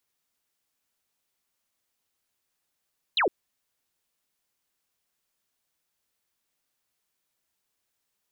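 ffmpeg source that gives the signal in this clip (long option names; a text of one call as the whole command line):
ffmpeg -f lavfi -i "aevalsrc='0.1*clip(t/0.002,0,1)*clip((0.11-t)/0.002,0,1)*sin(2*PI*4200*0.11/log(310/4200)*(exp(log(310/4200)*t/0.11)-1))':duration=0.11:sample_rate=44100" out.wav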